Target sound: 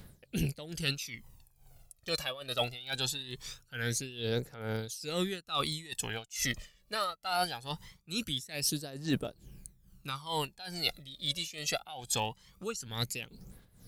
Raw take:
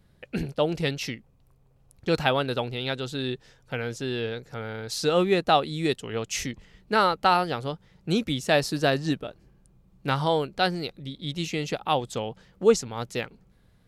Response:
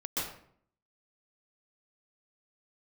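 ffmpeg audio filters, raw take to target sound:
-af "aphaser=in_gain=1:out_gain=1:delay=1.8:decay=0.66:speed=0.22:type=triangular,crystalizer=i=5.5:c=0,areverse,acompressor=threshold=-27dB:ratio=16,areverse,tremolo=f=2.3:d=0.84"

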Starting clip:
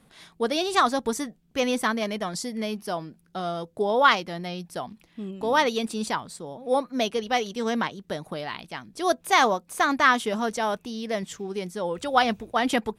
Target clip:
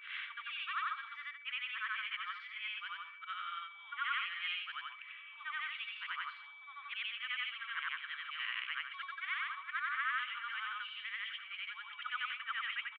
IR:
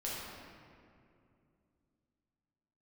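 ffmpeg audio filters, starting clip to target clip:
-filter_complex "[0:a]afftfilt=real='re':imag='-im':win_size=8192:overlap=0.75,areverse,acompressor=threshold=-38dB:ratio=20,areverse,alimiter=level_in=15dB:limit=-24dB:level=0:latency=1:release=275,volume=-15dB,aeval=exprs='val(0)+0.000316*sin(2*PI*2300*n/s)':c=same,crystalizer=i=4:c=0,asuperpass=centerf=1900:order=12:qfactor=1,asplit=2[a][b];[b]aecho=0:1:216:0.112[c];[a][c]amix=inputs=2:normalize=0,volume=13dB"

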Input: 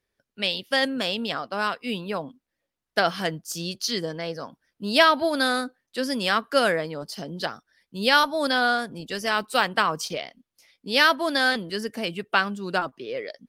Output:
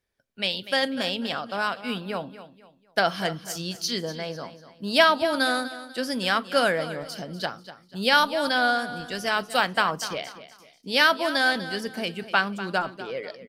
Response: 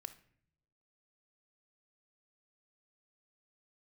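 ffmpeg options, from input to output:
-filter_complex "[0:a]aecho=1:1:245|490|735:0.2|0.0678|0.0231,asplit=2[a][b];[1:a]atrim=start_sample=2205,asetrate=74970,aresample=44100[c];[b][c]afir=irnorm=-1:irlink=0,volume=7dB[d];[a][d]amix=inputs=2:normalize=0,volume=-5.5dB"

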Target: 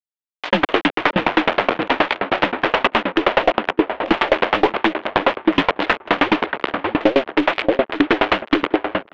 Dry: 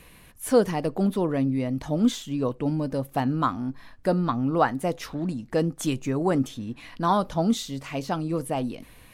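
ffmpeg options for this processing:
-filter_complex "[0:a]equalizer=f=670:t=o:w=0.23:g=12.5,aecho=1:1:5.9:0.47,asplit=2[a][b];[b]acompressor=threshold=-32dB:ratio=4,volume=-2.5dB[c];[a][c]amix=inputs=2:normalize=0,asetrate=29433,aresample=44100,atempo=1.49831,acrusher=bits=4:mode=log:mix=0:aa=0.000001,afreqshift=15,acrusher=bits=3:mix=0:aa=0.000001,highpass=f=580:t=q:w=0.5412,highpass=f=580:t=q:w=1.307,lowpass=f=3.4k:t=q:w=0.5176,lowpass=f=3.4k:t=q:w=0.7071,lowpass=f=3.4k:t=q:w=1.932,afreqshift=-160,asplit=2[d][e];[e]adelay=605,lowpass=f=1.8k:p=1,volume=-11dB,asplit=2[f][g];[g]adelay=605,lowpass=f=1.8k:p=1,volume=0.37,asplit=2[h][i];[i]adelay=605,lowpass=f=1.8k:p=1,volume=0.37,asplit=2[j][k];[k]adelay=605,lowpass=f=1.8k:p=1,volume=0.37[l];[f][h][j][l]amix=inputs=4:normalize=0[m];[d][m]amix=inputs=2:normalize=0,aeval=exprs='(tanh(7.08*val(0)+0.25)-tanh(0.25))/7.08':c=same,alimiter=level_in=27dB:limit=-1dB:release=50:level=0:latency=1,aeval=exprs='val(0)*pow(10,-29*if(lt(mod(9.5*n/s,1),2*abs(9.5)/1000),1-mod(9.5*n/s,1)/(2*abs(9.5)/1000),(mod(9.5*n/s,1)-2*abs(9.5)/1000)/(1-2*abs(9.5)/1000))/20)':c=same"

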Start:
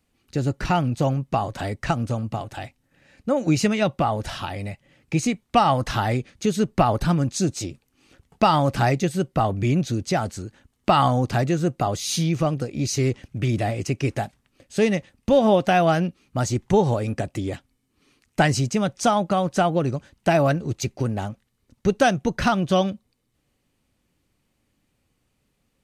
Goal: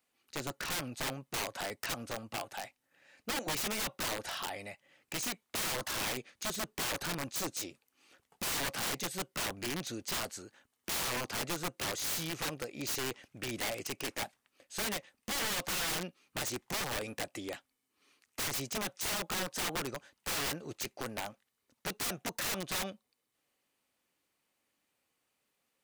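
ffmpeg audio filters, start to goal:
-filter_complex "[0:a]asplit=2[a][b];[b]highpass=f=720:p=1,volume=9dB,asoftclip=type=tanh:threshold=-4dB[c];[a][c]amix=inputs=2:normalize=0,lowpass=f=1.2k:p=1,volume=-6dB,aemphasis=mode=production:type=riaa,aeval=exprs='(mod(13.3*val(0)+1,2)-1)/13.3':c=same,volume=-7dB"

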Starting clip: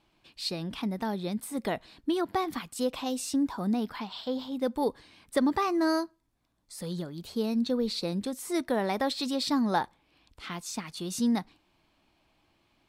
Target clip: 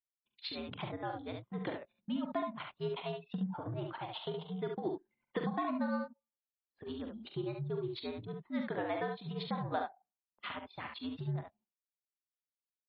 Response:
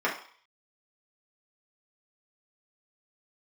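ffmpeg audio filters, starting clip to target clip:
-filter_complex "[0:a]agate=range=-29dB:threshold=-57dB:ratio=16:detection=peak,tremolo=f=8.4:d=0.79,highpass=f=290:t=q:w=0.5412,highpass=f=290:t=q:w=1.307,lowpass=f=3.6k:t=q:w=0.5176,lowpass=f=3.6k:t=q:w=0.7071,lowpass=f=3.6k:t=q:w=1.932,afreqshift=-92,asplit=2[a][b];[b]acrossover=split=310 2600:gain=0.0708 1 0.0891[c][d][e];[c][d][e]amix=inputs=3:normalize=0[f];[1:a]atrim=start_sample=2205,lowshelf=f=81:g=12[g];[f][g]afir=irnorm=-1:irlink=0,volume=-22.5dB[h];[a][h]amix=inputs=2:normalize=0,acompressor=threshold=-50dB:ratio=2,anlmdn=0.00251,aecho=1:1:43|70:0.376|0.562,volume=6.5dB" -ar 24000 -c:a libmp3lame -b:a 24k

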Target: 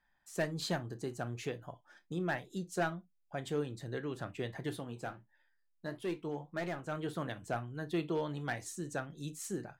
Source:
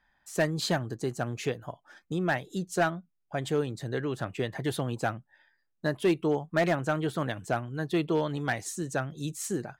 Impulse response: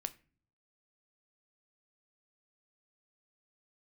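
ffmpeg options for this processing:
-filter_complex "[0:a]asplit=3[a][b][c];[a]afade=t=out:st=4.69:d=0.02[d];[b]flanger=delay=7.2:depth=7.6:regen=64:speed=1.5:shape=triangular,afade=t=in:st=4.69:d=0.02,afade=t=out:st=6.91:d=0.02[e];[c]afade=t=in:st=6.91:d=0.02[f];[d][e][f]amix=inputs=3:normalize=0[g];[1:a]atrim=start_sample=2205,atrim=end_sample=3087[h];[g][h]afir=irnorm=-1:irlink=0,volume=-6dB"

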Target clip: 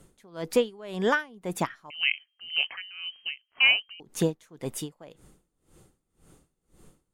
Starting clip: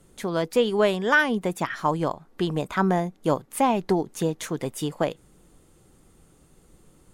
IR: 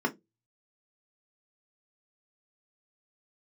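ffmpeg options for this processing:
-filter_complex "[0:a]asettb=1/sr,asplit=3[a][b][c];[a]atrim=end=1.904[d];[b]atrim=start=1.9:end=4,asetpts=PTS-STARTPTS,afade=t=in:d=0.004:c=qsin,afade=t=out:st=2.096:d=0.004:c=qsin,lowpass=f=2.7k:t=q:w=0.5098,lowpass=f=2.7k:t=q:w=0.6013,lowpass=f=2.7k:t=q:w=0.9,lowpass=f=2.7k:t=q:w=2.563,afreqshift=-3200[e];[c]atrim=start=3.996[f];[d][e]acrossfade=d=0.004:c1=hsin:c2=qsin[g];[g][f]acrossfade=d=0.004:c1=qsin:c2=hsin,aeval=exprs='val(0)*pow(10,-27*(0.5-0.5*cos(2*PI*1.9*n/s))/20)':c=same,volume=2dB"

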